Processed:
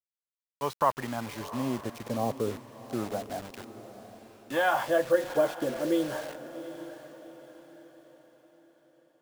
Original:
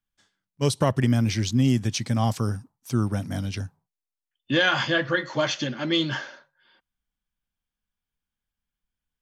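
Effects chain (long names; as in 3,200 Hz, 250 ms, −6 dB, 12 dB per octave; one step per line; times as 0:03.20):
LFO wah 0.31 Hz 460–1,000 Hz, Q 2.9
bit-depth reduction 8 bits, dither none
feedback delay with all-pass diffusion 757 ms, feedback 41%, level −13 dB
level +6 dB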